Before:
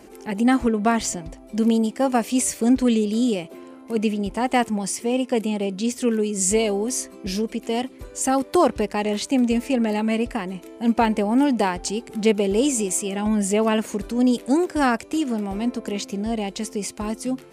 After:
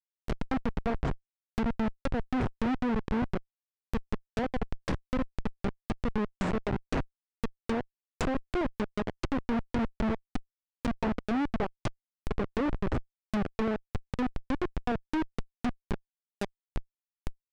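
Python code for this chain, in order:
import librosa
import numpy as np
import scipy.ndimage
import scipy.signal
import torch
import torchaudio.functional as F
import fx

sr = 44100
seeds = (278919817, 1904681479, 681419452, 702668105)

y = fx.tremolo_shape(x, sr, shape='saw_down', hz=3.9, depth_pct=90)
y = fx.schmitt(y, sr, flips_db=-21.5)
y = fx.env_lowpass_down(y, sr, base_hz=1900.0, full_db=-25.5)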